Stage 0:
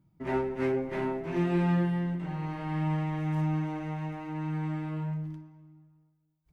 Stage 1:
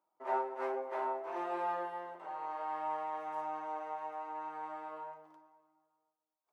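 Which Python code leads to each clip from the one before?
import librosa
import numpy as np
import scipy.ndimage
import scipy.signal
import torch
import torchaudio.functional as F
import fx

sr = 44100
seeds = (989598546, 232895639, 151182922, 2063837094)

y = scipy.signal.sosfilt(scipy.signal.butter(4, 550.0, 'highpass', fs=sr, output='sos'), x)
y = fx.high_shelf_res(y, sr, hz=1500.0, db=-10.0, q=1.5)
y = y * 10.0 ** (1.0 / 20.0)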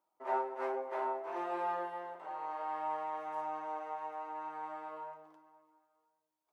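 y = fx.echo_feedback(x, sr, ms=348, feedback_pct=46, wet_db=-22.0)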